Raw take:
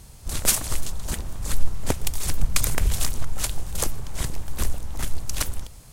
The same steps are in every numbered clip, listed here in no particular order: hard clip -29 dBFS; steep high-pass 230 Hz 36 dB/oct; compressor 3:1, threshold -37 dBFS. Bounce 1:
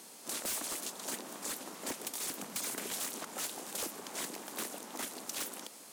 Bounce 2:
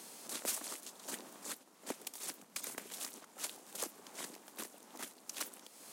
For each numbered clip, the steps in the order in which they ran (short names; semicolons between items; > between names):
steep high-pass > hard clip > compressor; compressor > steep high-pass > hard clip